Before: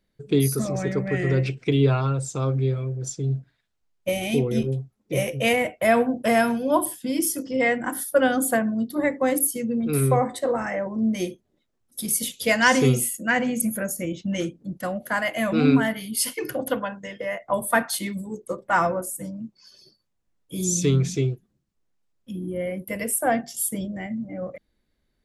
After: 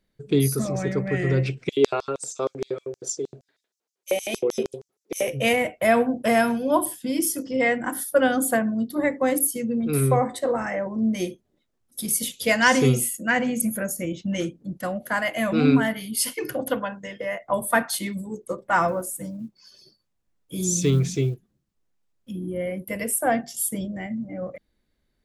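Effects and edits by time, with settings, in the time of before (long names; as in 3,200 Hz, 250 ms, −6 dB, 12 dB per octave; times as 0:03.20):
0:01.69–0:05.28: auto-filter high-pass square 6.4 Hz 410–5,900 Hz
0:18.88–0:22.32: one scale factor per block 7 bits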